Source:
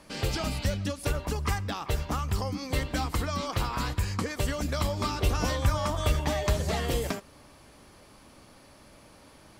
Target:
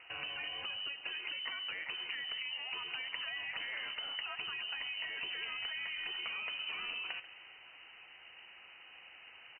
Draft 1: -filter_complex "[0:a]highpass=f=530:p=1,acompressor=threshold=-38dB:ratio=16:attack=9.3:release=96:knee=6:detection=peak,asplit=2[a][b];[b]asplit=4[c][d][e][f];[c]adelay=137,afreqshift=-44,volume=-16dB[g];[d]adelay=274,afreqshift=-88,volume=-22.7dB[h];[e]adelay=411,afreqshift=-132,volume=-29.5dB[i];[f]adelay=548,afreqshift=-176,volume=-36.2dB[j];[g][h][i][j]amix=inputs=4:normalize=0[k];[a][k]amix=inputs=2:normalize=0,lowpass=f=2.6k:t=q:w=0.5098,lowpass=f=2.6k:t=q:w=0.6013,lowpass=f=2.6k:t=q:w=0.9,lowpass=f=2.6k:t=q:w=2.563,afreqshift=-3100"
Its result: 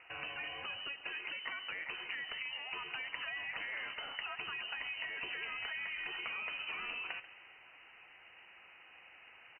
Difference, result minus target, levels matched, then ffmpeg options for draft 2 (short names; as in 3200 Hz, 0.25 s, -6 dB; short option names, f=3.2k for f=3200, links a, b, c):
500 Hz band +3.5 dB
-filter_complex "[0:a]highpass=f=140:p=1,acompressor=threshold=-38dB:ratio=16:attack=9.3:release=96:knee=6:detection=peak,asplit=2[a][b];[b]asplit=4[c][d][e][f];[c]adelay=137,afreqshift=-44,volume=-16dB[g];[d]adelay=274,afreqshift=-88,volume=-22.7dB[h];[e]adelay=411,afreqshift=-132,volume=-29.5dB[i];[f]adelay=548,afreqshift=-176,volume=-36.2dB[j];[g][h][i][j]amix=inputs=4:normalize=0[k];[a][k]amix=inputs=2:normalize=0,lowpass=f=2.6k:t=q:w=0.5098,lowpass=f=2.6k:t=q:w=0.6013,lowpass=f=2.6k:t=q:w=0.9,lowpass=f=2.6k:t=q:w=2.563,afreqshift=-3100"